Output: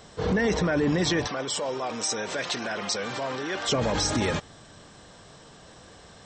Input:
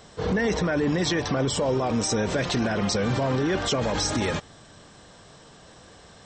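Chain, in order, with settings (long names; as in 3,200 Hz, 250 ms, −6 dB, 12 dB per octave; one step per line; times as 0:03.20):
0:01.27–0:03.69: high-pass filter 860 Hz 6 dB per octave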